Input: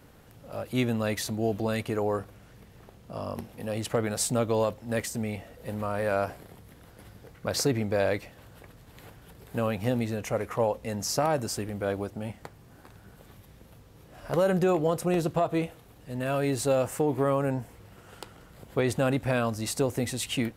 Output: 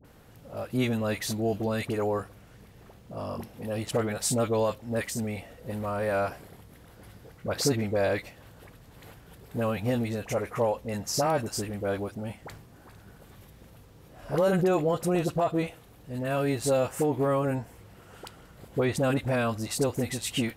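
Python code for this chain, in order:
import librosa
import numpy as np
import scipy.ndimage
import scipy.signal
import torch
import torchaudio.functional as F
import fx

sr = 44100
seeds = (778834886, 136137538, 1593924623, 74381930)

y = fx.dispersion(x, sr, late='highs', ms=47.0, hz=1000.0)
y = fx.sustainer(y, sr, db_per_s=66.0, at=(12.41, 14.69))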